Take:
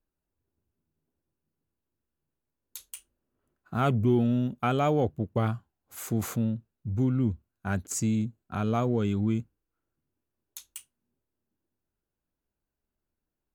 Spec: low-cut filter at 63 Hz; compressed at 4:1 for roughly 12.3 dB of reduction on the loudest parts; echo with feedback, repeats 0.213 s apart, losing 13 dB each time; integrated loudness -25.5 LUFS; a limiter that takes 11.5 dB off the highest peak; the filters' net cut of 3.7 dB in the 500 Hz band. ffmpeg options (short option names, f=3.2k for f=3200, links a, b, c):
-af "highpass=63,equalizer=f=500:t=o:g=-5,acompressor=threshold=-37dB:ratio=4,alimiter=level_in=9.5dB:limit=-24dB:level=0:latency=1,volume=-9.5dB,aecho=1:1:213|426|639:0.224|0.0493|0.0108,volume=18.5dB"